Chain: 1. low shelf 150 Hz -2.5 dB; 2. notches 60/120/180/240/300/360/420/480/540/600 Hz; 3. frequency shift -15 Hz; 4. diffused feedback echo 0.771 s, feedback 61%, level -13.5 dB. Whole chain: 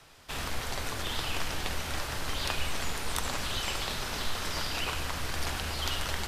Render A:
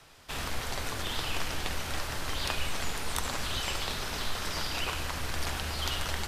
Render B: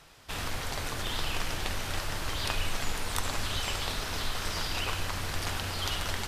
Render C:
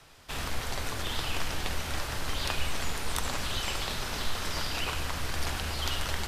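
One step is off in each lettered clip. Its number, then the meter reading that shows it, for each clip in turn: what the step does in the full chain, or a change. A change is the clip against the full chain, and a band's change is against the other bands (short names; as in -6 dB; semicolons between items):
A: 4, echo-to-direct -11.5 dB to none; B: 3, 125 Hz band +1.5 dB; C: 1, 125 Hz band +1.5 dB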